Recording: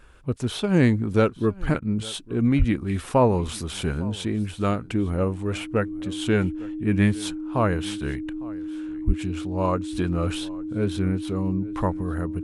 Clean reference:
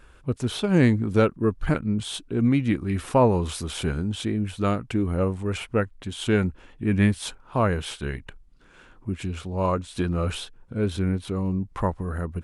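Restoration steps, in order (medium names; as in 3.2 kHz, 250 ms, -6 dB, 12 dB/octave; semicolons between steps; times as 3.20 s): band-stop 310 Hz, Q 30; de-plosive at 2.58/9.06 s; interpolate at 1.80 s, 15 ms; inverse comb 855 ms -21.5 dB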